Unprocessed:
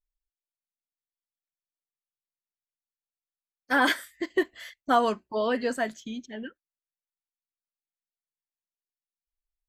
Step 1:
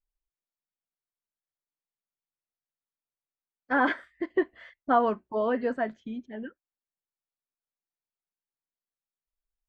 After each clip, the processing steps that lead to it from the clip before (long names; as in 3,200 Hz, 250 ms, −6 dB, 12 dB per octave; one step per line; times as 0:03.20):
low-pass filter 1,600 Hz 12 dB per octave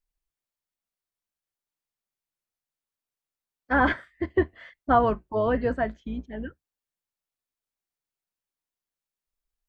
sub-octave generator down 2 octaves, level −4 dB
level +2.5 dB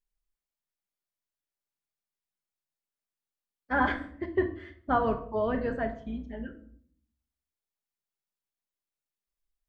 rectangular room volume 810 cubic metres, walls furnished, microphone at 1.3 metres
level −5.5 dB